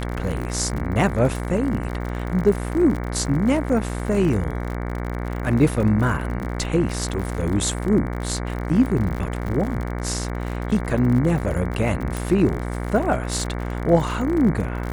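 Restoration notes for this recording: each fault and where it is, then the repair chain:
buzz 60 Hz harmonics 38 -27 dBFS
crackle 58/s -28 dBFS
12.17 pop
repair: de-click; de-hum 60 Hz, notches 38

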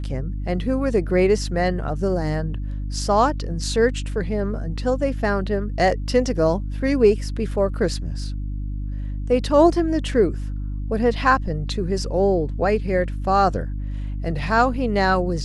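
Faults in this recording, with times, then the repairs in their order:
hum 50 Hz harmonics 6 -27 dBFS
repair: de-hum 50 Hz, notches 6

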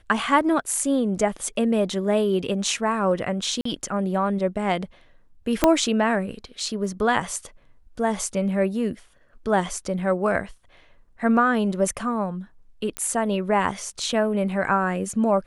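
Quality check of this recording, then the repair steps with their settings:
3.61–3.65 gap 44 ms
5.64 pop -2 dBFS
12.97 pop -11 dBFS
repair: de-click; interpolate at 3.61, 44 ms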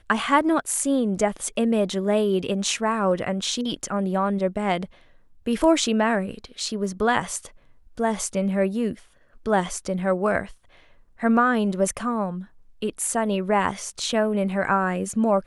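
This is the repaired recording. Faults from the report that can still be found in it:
5.64 pop

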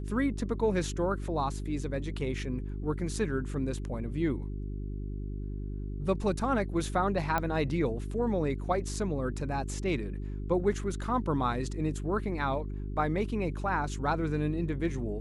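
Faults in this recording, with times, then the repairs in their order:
hum 50 Hz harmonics 8 -36 dBFS
7.38 pop -15 dBFS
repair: de-click; de-hum 50 Hz, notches 8

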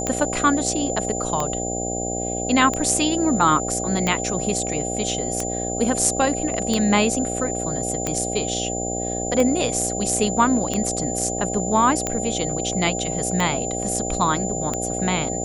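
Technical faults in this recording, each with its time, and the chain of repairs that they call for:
buzz 60 Hz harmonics 13 -28 dBFS
tick 45 rpm -9 dBFS
tone 7100 Hz -28 dBFS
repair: de-click; de-hum 60 Hz, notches 13; notch 7100 Hz, Q 30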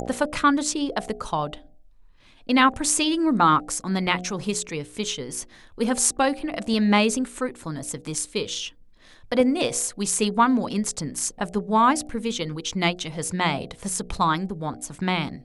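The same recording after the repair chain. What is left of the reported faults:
none

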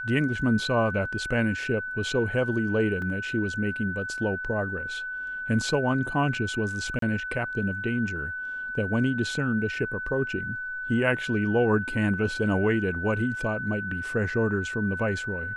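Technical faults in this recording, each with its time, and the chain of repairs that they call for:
tone 1500 Hz -31 dBFS
3.02 gap 2.4 ms
6.99–7.02 gap 33 ms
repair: notch 1500 Hz, Q 30; interpolate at 3.02, 2.4 ms; interpolate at 6.99, 33 ms

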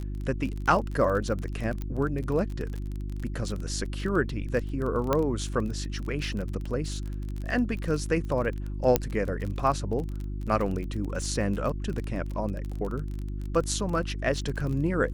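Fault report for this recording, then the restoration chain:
crackle 26/s -32 dBFS
hum 50 Hz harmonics 7 -33 dBFS
1.82 pop -21 dBFS
5.13 pop -11 dBFS
8.96 pop -6 dBFS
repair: de-click; de-hum 50 Hz, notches 7

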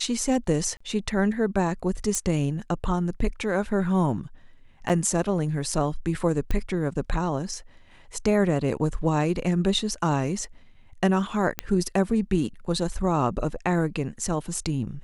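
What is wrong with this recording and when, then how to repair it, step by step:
0.77–0.81 gap 35 ms
2.15 pop -12 dBFS
4.89–4.9 gap 6.8 ms
6.51 pop -15 dBFS
11.59 pop -9 dBFS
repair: de-click; interpolate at 0.77, 35 ms; interpolate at 4.89, 6.8 ms

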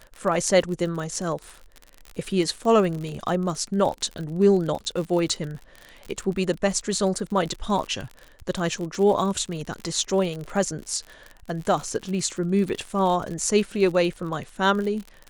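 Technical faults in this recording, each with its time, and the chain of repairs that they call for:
crackle 51/s -30 dBFS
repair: de-click

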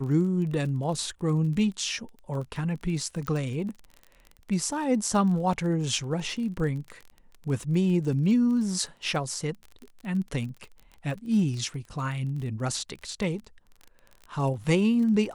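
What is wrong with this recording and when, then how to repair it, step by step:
crackle 27/s -35 dBFS
3.27 pop -18 dBFS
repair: de-click

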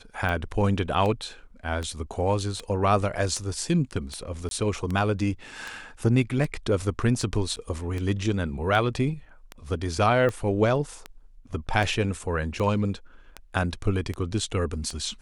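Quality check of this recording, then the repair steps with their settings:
tick 78 rpm -18 dBFS
4.49–4.51 gap 22 ms
7.56–7.57 gap 8.6 ms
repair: de-click; interpolate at 4.49, 22 ms; interpolate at 7.56, 8.6 ms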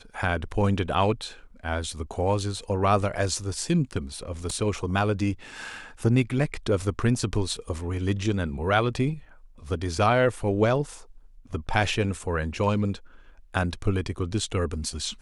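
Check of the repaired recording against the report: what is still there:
none

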